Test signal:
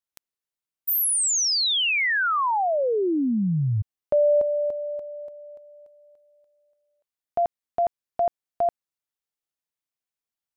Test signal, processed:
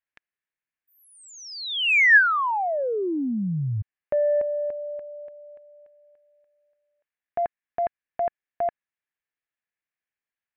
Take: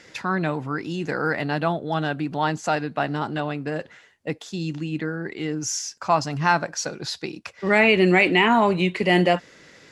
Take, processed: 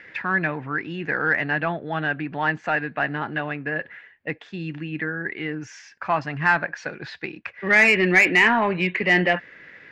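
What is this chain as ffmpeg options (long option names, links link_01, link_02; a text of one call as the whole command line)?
ffmpeg -i in.wav -af "lowpass=frequency=2300:width_type=q:width=2.5,acontrast=37,equalizer=frequency=1700:width=6.4:gain=9.5,volume=-8.5dB" out.wav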